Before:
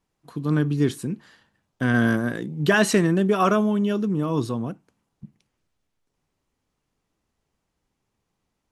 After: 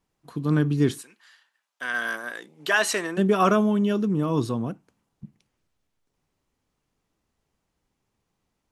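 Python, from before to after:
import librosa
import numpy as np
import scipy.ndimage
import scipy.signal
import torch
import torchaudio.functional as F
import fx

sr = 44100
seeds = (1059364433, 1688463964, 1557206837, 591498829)

y = fx.highpass(x, sr, hz=fx.line((1.01, 1500.0), (3.17, 560.0)), slope=12, at=(1.01, 3.17), fade=0.02)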